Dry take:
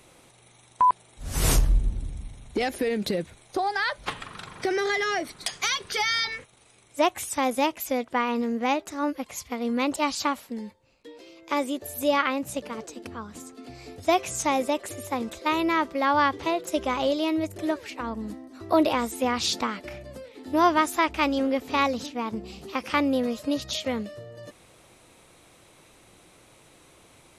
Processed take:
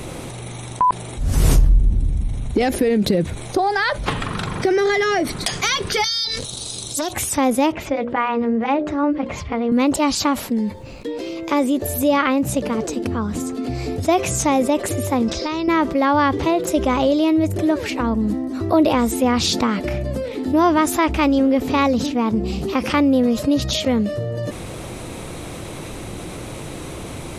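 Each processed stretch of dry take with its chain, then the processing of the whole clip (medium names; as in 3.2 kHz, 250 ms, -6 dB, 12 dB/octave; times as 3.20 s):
6.04–7.13 s: resonant high shelf 3 kHz +11.5 dB, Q 3 + compression, threshold -28 dBFS + transformer saturation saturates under 2.5 kHz
7.72–9.72 s: low-pass 2.5 kHz + hum notches 60/120/180/240/300/360/420/480/540/600 Hz + comb of notches 250 Hz
15.28–15.68 s: resonant low-pass 5.3 kHz, resonance Q 6.3 + compression 5:1, threshold -35 dBFS
whole clip: bass shelf 490 Hz +11 dB; level flattener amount 50%; trim -4.5 dB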